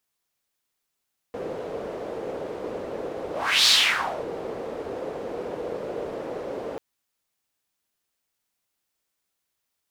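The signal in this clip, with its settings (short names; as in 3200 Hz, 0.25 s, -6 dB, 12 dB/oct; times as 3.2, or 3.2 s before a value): whoosh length 5.44 s, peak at 2.33, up 0.38 s, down 0.60 s, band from 480 Hz, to 4200 Hz, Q 3.2, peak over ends 15.5 dB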